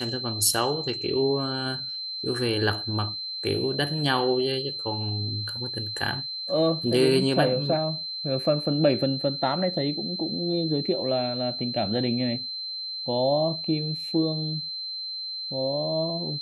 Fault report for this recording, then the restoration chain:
whine 4.1 kHz -31 dBFS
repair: band-stop 4.1 kHz, Q 30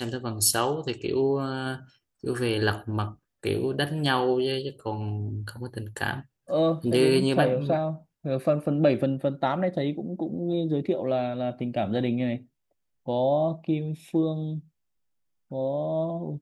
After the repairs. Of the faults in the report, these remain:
nothing left

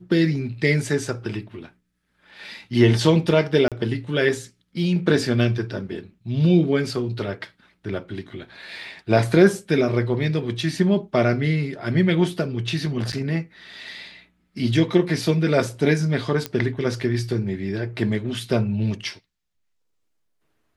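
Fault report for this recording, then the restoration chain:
3.68–3.72 s: dropout 37 ms
13.12–13.13 s: dropout 8.8 ms
16.46 s: pop -10 dBFS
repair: de-click; interpolate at 3.68 s, 37 ms; interpolate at 13.12 s, 8.8 ms

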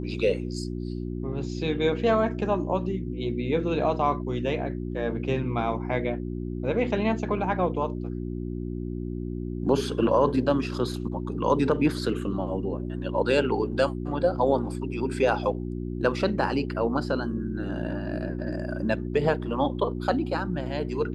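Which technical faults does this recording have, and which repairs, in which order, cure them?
hum 60 Hz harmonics 6 -32 dBFS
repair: de-hum 60 Hz, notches 6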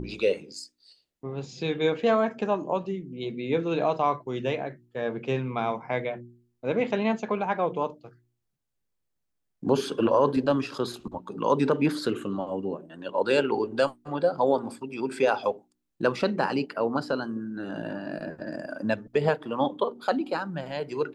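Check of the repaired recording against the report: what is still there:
nothing left

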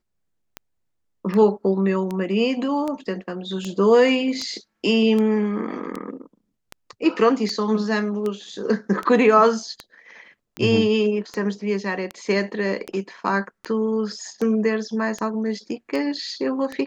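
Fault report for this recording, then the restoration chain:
tick 78 rpm -15 dBFS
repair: de-click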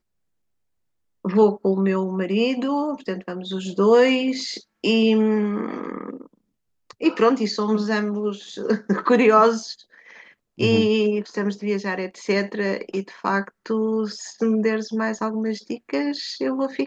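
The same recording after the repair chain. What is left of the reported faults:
nothing left

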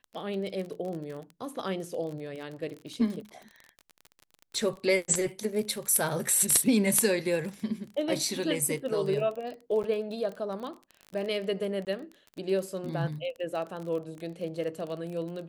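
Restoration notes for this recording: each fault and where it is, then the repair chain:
crackle 27 per s -35 dBFS
9.83–9.84 s: dropout 9.2 ms
11.85–11.87 s: dropout 18 ms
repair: de-click; interpolate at 9.83 s, 9.2 ms; interpolate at 11.85 s, 18 ms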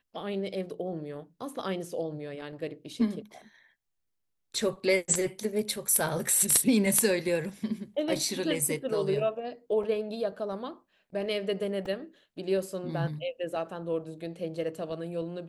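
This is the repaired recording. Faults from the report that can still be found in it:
nothing left

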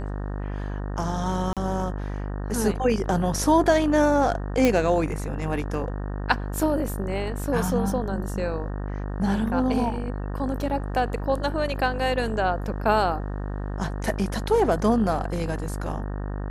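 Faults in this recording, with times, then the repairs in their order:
buzz 50 Hz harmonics 37 -30 dBFS
1.53–1.57 s: dropout 37 ms
4.65 s: pop -7 dBFS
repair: de-click; de-hum 50 Hz, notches 37; interpolate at 1.53 s, 37 ms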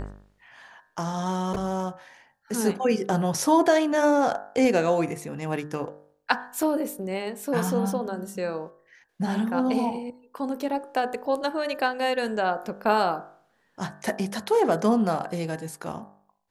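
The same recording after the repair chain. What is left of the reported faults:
nothing left

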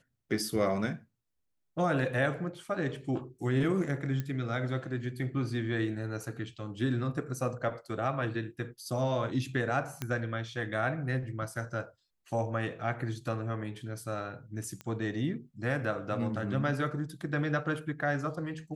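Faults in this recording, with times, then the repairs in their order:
4.20 s: pop -21 dBFS
10.02 s: pop -18 dBFS
14.81 s: pop -26 dBFS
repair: de-click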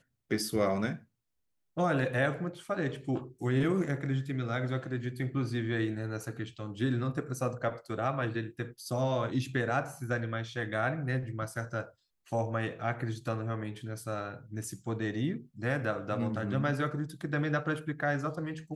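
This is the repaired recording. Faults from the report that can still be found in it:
10.02 s: pop

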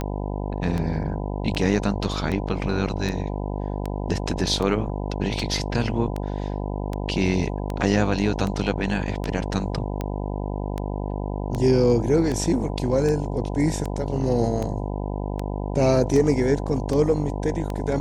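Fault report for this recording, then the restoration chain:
buzz 50 Hz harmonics 20 -28 dBFS
tick 78 rpm -15 dBFS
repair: de-click; de-hum 50 Hz, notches 20

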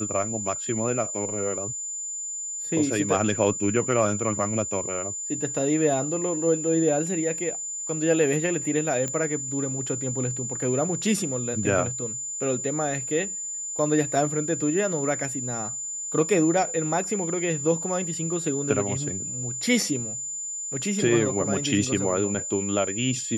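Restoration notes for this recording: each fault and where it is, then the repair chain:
whine 7.1 kHz -30 dBFS
9.08 s: pop -16 dBFS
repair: de-click; band-stop 7.1 kHz, Q 30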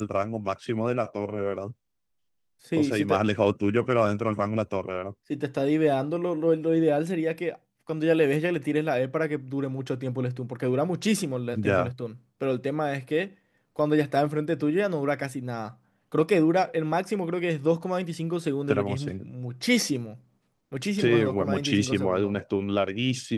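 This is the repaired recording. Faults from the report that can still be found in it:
nothing left

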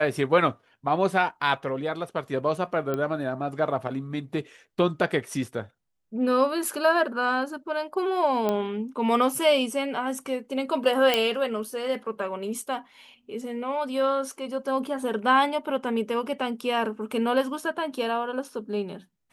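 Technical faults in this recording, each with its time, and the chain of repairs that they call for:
2.94 s: pop -16 dBFS
8.49 s: pop -13 dBFS
11.14 s: pop -7 dBFS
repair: de-click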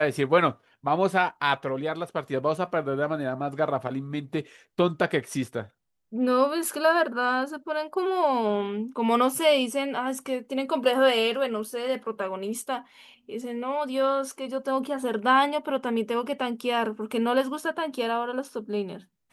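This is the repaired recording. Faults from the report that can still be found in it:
nothing left

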